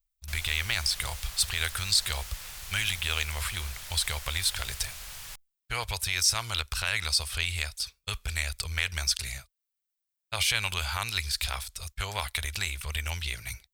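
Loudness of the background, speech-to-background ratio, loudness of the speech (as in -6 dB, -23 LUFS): -40.5 LUFS, 11.0 dB, -29.5 LUFS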